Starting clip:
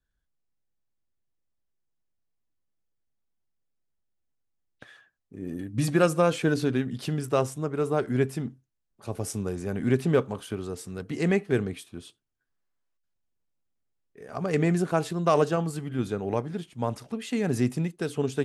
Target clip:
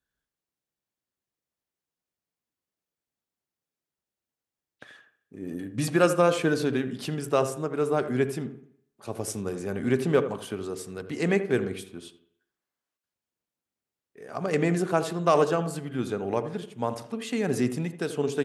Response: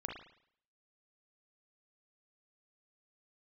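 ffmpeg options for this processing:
-filter_complex "[0:a]highpass=frequency=220:poles=1,asplit=2[link_01][link_02];[link_02]adelay=83,lowpass=frequency=1000:poles=1,volume=-10dB,asplit=2[link_03][link_04];[link_04]adelay=83,lowpass=frequency=1000:poles=1,volume=0.36,asplit=2[link_05][link_06];[link_06]adelay=83,lowpass=frequency=1000:poles=1,volume=0.36,asplit=2[link_07][link_08];[link_08]adelay=83,lowpass=frequency=1000:poles=1,volume=0.36[link_09];[link_01][link_03][link_05][link_07][link_09]amix=inputs=5:normalize=0,asplit=2[link_10][link_11];[1:a]atrim=start_sample=2205,asetrate=38367,aresample=44100[link_12];[link_11][link_12]afir=irnorm=-1:irlink=0,volume=-12dB[link_13];[link_10][link_13]amix=inputs=2:normalize=0"

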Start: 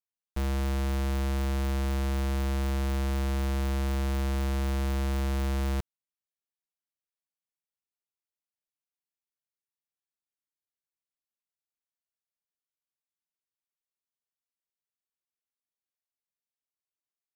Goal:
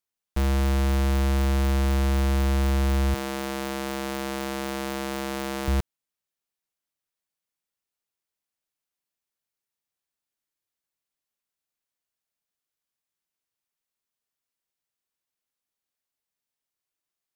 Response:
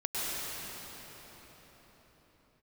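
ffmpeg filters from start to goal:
-filter_complex "[0:a]asettb=1/sr,asplit=3[link_01][link_02][link_03];[link_01]atrim=end=3.144[link_04];[link_02]atrim=start=3.14:end=5.68,asetpts=PTS-STARTPTS,afade=type=in:duration=0.004:curve=qsin,afade=type=out:start_time=2.536:duration=0.004:curve=qsin,highpass=250[link_05];[link_03]atrim=start=5.676[link_06];[link_04][link_05]acrossfade=duration=0.004:curve1=hsin:curve2=qsin[link_07];[link_07][link_06]acrossfade=duration=0.004:curve1=qsin:curve2=hsin,volume=6dB"

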